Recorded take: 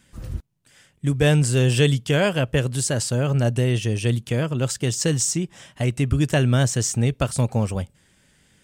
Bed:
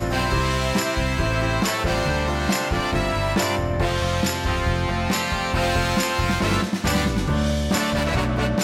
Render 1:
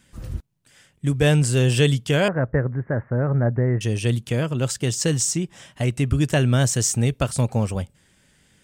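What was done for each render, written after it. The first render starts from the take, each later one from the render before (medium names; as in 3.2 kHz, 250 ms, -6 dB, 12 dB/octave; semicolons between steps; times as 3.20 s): 2.28–3.81 s: steep low-pass 2 kHz 72 dB/octave; 6.63–7.19 s: treble shelf 7.1 kHz +6 dB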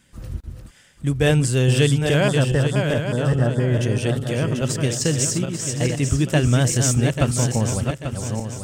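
backward echo that repeats 420 ms, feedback 61%, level -5 dB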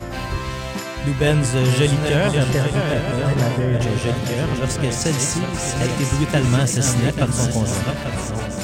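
add bed -6 dB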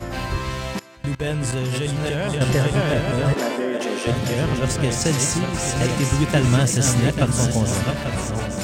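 0.79–2.41 s: level held to a coarse grid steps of 23 dB; 3.34–4.07 s: steep high-pass 230 Hz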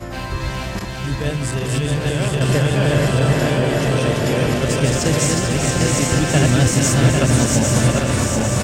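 backward echo that repeats 400 ms, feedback 74%, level -2.5 dB; delay 430 ms -9 dB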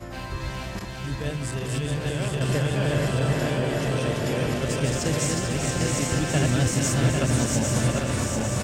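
trim -7.5 dB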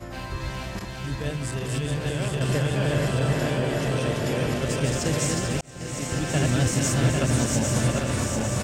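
5.61–6.70 s: fade in equal-power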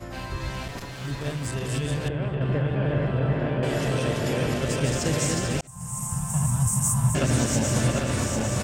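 0.68–1.47 s: comb filter that takes the minimum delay 7.1 ms; 2.08–3.63 s: distance through air 490 m; 5.67–7.15 s: FFT filter 210 Hz 0 dB, 300 Hz -29 dB, 550 Hz -21 dB, 1 kHz +6 dB, 1.5 kHz -15 dB, 2.1 kHz -17 dB, 4.3 kHz -19 dB, 9.2 kHz +11 dB, 14 kHz +8 dB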